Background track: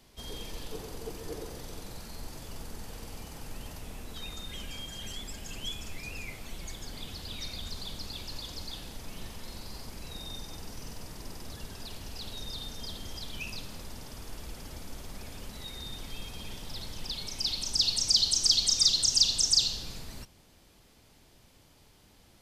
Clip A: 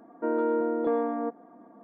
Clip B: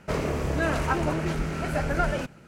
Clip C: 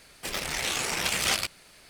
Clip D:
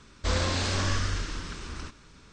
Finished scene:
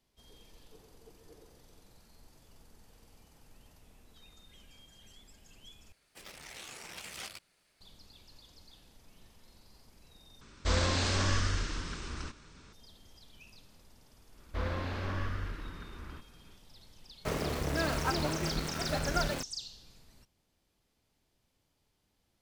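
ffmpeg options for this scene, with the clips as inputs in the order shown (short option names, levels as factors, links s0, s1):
-filter_complex "[4:a]asplit=2[s0][s1];[0:a]volume=0.141[s2];[s1]lowpass=2200[s3];[2:a]aeval=exprs='val(0)*gte(abs(val(0)),0.0355)':c=same[s4];[s2]asplit=3[s5][s6][s7];[s5]atrim=end=5.924[s8];[3:a]atrim=end=1.89,asetpts=PTS-STARTPTS,volume=0.126[s9];[s6]atrim=start=7.806:end=10.414[s10];[s0]atrim=end=2.32,asetpts=PTS-STARTPTS,volume=0.794[s11];[s7]atrim=start=12.726[s12];[s3]atrim=end=2.32,asetpts=PTS-STARTPTS,volume=0.447,afade=t=in:d=0.1,afade=t=out:st=2.22:d=0.1,adelay=14300[s13];[s4]atrim=end=2.47,asetpts=PTS-STARTPTS,volume=0.501,afade=t=in:d=0.004:c=hsin,afade=t=out:st=2.466:d=0.004:c=hsin,adelay=17170[s14];[s8][s9]acrossfade=d=0.004:c1=hsin:c2=hsin[s15];[s15][s10]acrossfade=d=0.004:c1=hsin:c2=hsin[s16];[s16][s11]acrossfade=d=0.004:c1=hsin:c2=hsin[s17];[s17][s12]acrossfade=d=0.004:c1=hsin:c2=hsin[s18];[s18][s13][s14]amix=inputs=3:normalize=0"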